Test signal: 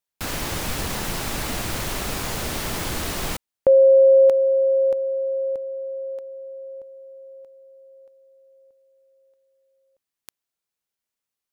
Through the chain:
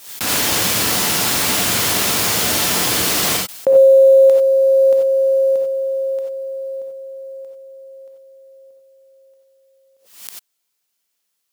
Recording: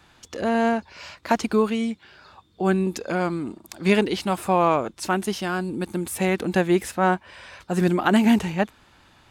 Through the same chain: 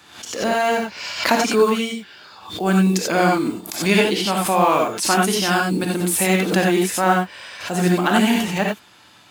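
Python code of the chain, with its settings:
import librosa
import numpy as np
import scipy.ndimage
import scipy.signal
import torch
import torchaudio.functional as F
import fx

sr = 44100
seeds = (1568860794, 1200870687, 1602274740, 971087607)

y = fx.block_float(x, sr, bits=7)
y = scipy.signal.sosfilt(scipy.signal.butter(2, 140.0, 'highpass', fs=sr, output='sos'), y)
y = fx.high_shelf(y, sr, hz=2300.0, db=7.0)
y = fx.rider(y, sr, range_db=3, speed_s=0.5)
y = fx.rev_gated(y, sr, seeds[0], gate_ms=110, shape='rising', drr_db=-0.5)
y = fx.pre_swell(y, sr, db_per_s=99.0)
y = y * 10.0 ** (1.0 / 20.0)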